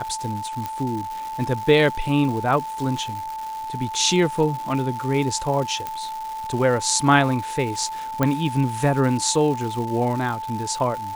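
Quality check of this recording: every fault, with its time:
surface crackle 430 per second −30 dBFS
whistle 880 Hz −28 dBFS
0:00.66: click −13 dBFS
0:05.87: click −13 dBFS
0:08.23: click −7 dBFS

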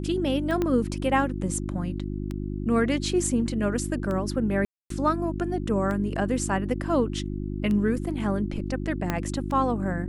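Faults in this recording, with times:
mains hum 50 Hz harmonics 7 −31 dBFS
scratch tick 33 1/3 rpm −20 dBFS
0:00.62: click −14 dBFS
0:04.65–0:04.90: drop-out 253 ms
0:09.10: click −11 dBFS

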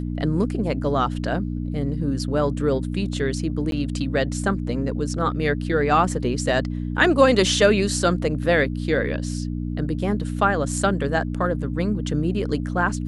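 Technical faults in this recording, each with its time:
mains hum 60 Hz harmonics 5 −27 dBFS
0:03.71–0:03.72: drop-out 12 ms

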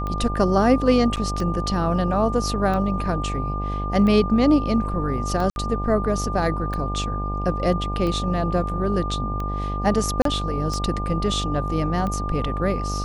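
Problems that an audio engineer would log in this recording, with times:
mains buzz 50 Hz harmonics 18 −27 dBFS
scratch tick 45 rpm −17 dBFS
whistle 1,200 Hz −29 dBFS
0:01.16–0:01.17: drop-out 8.5 ms
0:05.50–0:05.56: drop-out 61 ms
0:10.22–0:10.25: drop-out 33 ms

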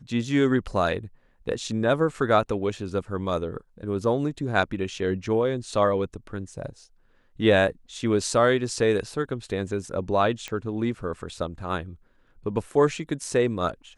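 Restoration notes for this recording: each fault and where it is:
0:10.48: click −18 dBFS

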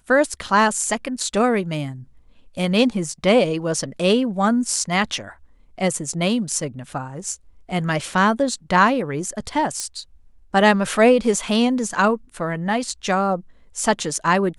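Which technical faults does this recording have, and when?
0:09.80: click −11 dBFS

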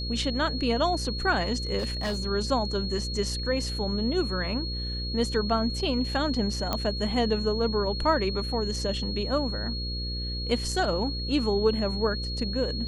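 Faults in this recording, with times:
mains buzz 60 Hz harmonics 9 −33 dBFS
whistle 4,300 Hz −34 dBFS
0:01.78–0:02.22: clipping −24.5 dBFS
0:06.73: click −12 dBFS

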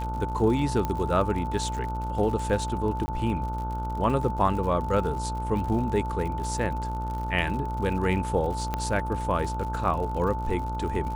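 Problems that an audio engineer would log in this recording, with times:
mains buzz 60 Hz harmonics 25 −32 dBFS
surface crackle 77 per second −34 dBFS
whistle 880 Hz −32 dBFS
0:00.85: click −15 dBFS
0:03.06–0:03.08: drop-out 20 ms
0:08.74: click −14 dBFS

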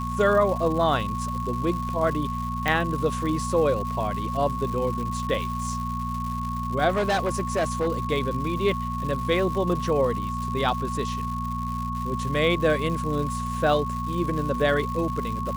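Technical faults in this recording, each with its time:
surface crackle 290 per second −32 dBFS
mains hum 60 Hz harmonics 4 −31 dBFS
whistle 1,100 Hz −30 dBFS
0:02.68: click −10 dBFS
0:06.88–0:07.88: clipping −19.5 dBFS

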